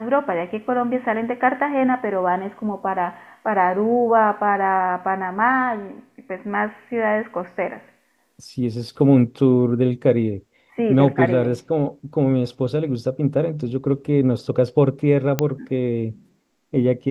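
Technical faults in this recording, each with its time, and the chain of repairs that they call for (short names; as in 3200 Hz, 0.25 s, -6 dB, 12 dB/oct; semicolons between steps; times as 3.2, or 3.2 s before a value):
15.39 pop -5 dBFS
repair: de-click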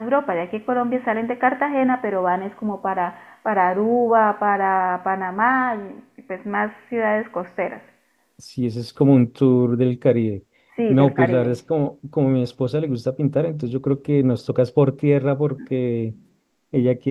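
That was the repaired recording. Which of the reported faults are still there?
none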